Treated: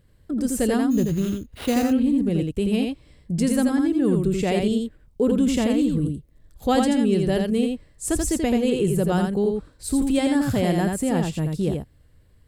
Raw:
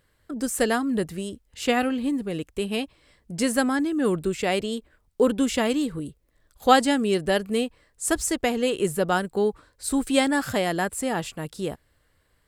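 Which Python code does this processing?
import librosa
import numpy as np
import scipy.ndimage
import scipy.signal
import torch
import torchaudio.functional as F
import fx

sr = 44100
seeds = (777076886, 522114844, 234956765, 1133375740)

p1 = fx.curve_eq(x, sr, hz=(150.0, 1400.0, 2500.0), db=(0, -17, -13))
p2 = fx.over_compress(p1, sr, threshold_db=-33.0, ratio=-1.0)
p3 = p1 + F.gain(torch.from_numpy(p2), -3.0).numpy()
p4 = fx.sample_hold(p3, sr, seeds[0], rate_hz=6700.0, jitter_pct=0, at=(0.9, 1.83), fade=0.02)
p5 = p4 + 10.0 ** (-4.0 / 20.0) * np.pad(p4, (int(84 * sr / 1000.0), 0))[:len(p4)]
y = F.gain(torch.from_numpy(p5), 5.0).numpy()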